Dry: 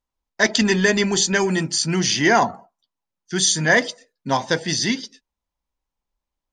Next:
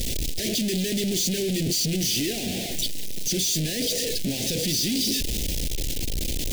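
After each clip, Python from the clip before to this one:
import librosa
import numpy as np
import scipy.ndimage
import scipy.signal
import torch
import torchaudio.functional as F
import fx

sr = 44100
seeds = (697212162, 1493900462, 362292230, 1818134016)

y = np.sign(x) * np.sqrt(np.mean(np.square(x)))
y = scipy.signal.sosfilt(scipy.signal.cheby1(2, 1.0, [400.0, 3100.0], 'bandstop', fs=sr, output='sos'), y)
y = F.gain(torch.from_numpy(y), -1.5).numpy()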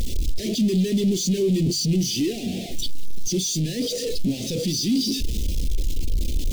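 y = fx.hum_notches(x, sr, base_hz=50, count=3)
y = 10.0 ** (-19.0 / 20.0) * np.tanh(y / 10.0 ** (-19.0 / 20.0))
y = fx.spectral_expand(y, sr, expansion=1.5)
y = F.gain(torch.from_numpy(y), 5.5).numpy()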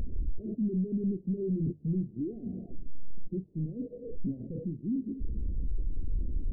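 y = fx.wiener(x, sr, points=9)
y = scipy.ndimage.gaussian_filter1d(y, 18.0, mode='constant')
y = F.gain(torch.from_numpy(y), -8.0).numpy()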